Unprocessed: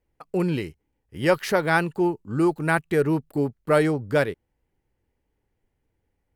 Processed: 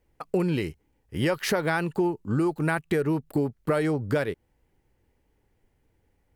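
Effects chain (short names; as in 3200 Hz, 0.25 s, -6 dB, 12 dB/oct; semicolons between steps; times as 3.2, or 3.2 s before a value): in parallel at 0 dB: limiter -15.5 dBFS, peak gain reduction 9 dB; on the sum: compressor 6:1, threshold -22 dBFS, peak gain reduction 11 dB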